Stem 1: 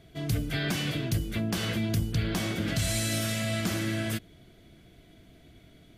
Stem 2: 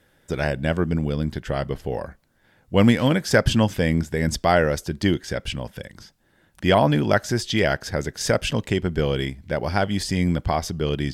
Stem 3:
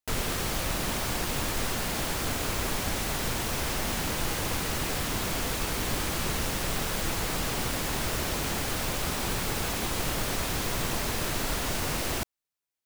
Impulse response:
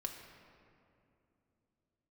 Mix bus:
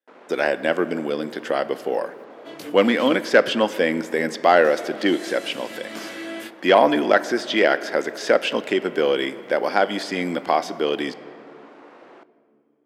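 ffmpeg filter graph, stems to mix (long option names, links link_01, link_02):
-filter_complex "[0:a]highshelf=frequency=5000:gain=-8.5,flanger=delay=17.5:depth=3.6:speed=0.86,adelay=2300,volume=2dB,asplit=3[link_01][link_02][link_03];[link_01]atrim=end=3.18,asetpts=PTS-STARTPTS,afade=type=out:start_time=3.176:duration=0.004:curve=hsin[link_04];[link_02]atrim=start=3.18:end=4.64,asetpts=PTS-STARTPTS,volume=0[link_05];[link_03]atrim=start=4.64,asetpts=PTS-STARTPTS,afade=type=in:duration=0.004:curve=hsin[link_06];[link_04][link_05][link_06]concat=n=3:v=0:a=1,asplit=2[link_07][link_08];[link_08]volume=-7dB[link_09];[1:a]acrossover=split=3700[link_10][link_11];[link_11]acompressor=threshold=-45dB:ratio=4:attack=1:release=60[link_12];[link_10][link_12]amix=inputs=2:normalize=0,agate=range=-32dB:threshold=-50dB:ratio=16:detection=peak,asoftclip=type=tanh:threshold=-8dB,volume=2dB,asplit=3[link_13][link_14][link_15];[link_14]volume=-4.5dB[link_16];[2:a]aeval=exprs='0.0596*(abs(mod(val(0)/0.0596+3,4)-2)-1)':channel_layout=same,lowpass=1400,volume=-12dB,asplit=2[link_17][link_18];[link_18]volume=-8dB[link_19];[link_15]apad=whole_len=365045[link_20];[link_07][link_20]sidechaincompress=threshold=-37dB:ratio=8:attack=6.9:release=142[link_21];[3:a]atrim=start_sample=2205[link_22];[link_09][link_16][link_19]amix=inputs=3:normalize=0[link_23];[link_23][link_22]afir=irnorm=-1:irlink=0[link_24];[link_21][link_13][link_17][link_24]amix=inputs=4:normalize=0,highpass=frequency=290:width=0.5412,highpass=frequency=290:width=1.3066"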